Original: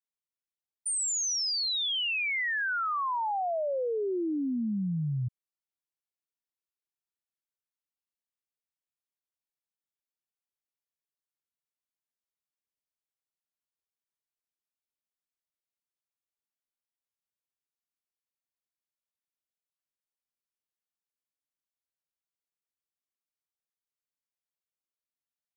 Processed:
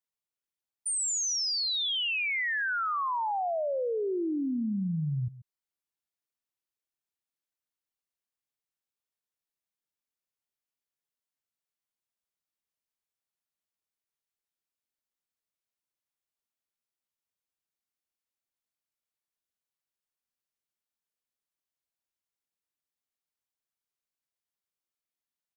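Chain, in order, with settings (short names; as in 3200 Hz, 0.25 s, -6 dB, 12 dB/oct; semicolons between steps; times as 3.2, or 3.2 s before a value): outdoor echo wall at 23 m, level -17 dB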